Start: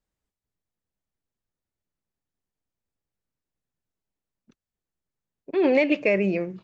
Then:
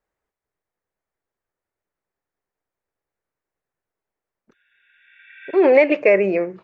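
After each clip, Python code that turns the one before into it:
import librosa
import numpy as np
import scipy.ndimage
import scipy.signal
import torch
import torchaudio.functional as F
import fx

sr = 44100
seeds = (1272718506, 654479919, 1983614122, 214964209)

y = fx.spec_repair(x, sr, seeds[0], start_s=4.55, length_s=0.99, low_hz=1400.0, high_hz=3800.0, source='both')
y = fx.band_shelf(y, sr, hz=890.0, db=11.5, octaves=3.0)
y = y * 10.0 ** (-3.0 / 20.0)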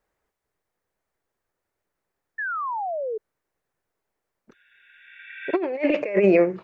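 y = fx.over_compress(x, sr, threshold_db=-19.0, ratio=-0.5)
y = fx.spec_paint(y, sr, seeds[1], shape='fall', start_s=2.38, length_s=0.8, low_hz=420.0, high_hz=1800.0, level_db=-28.0)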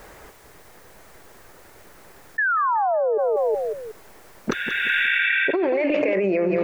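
y = fx.echo_feedback(x, sr, ms=185, feedback_pct=37, wet_db=-14.0)
y = fx.env_flatten(y, sr, amount_pct=100)
y = y * 10.0 ** (-6.5 / 20.0)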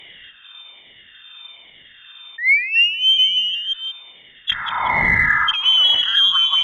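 y = fx.spec_ripple(x, sr, per_octave=0.86, drift_hz=1.2, depth_db=19)
y = fx.freq_invert(y, sr, carrier_hz=3600)
y = fx.cheby_harmonics(y, sr, harmonics=(6,), levels_db=(-41,), full_scale_db=-4.5)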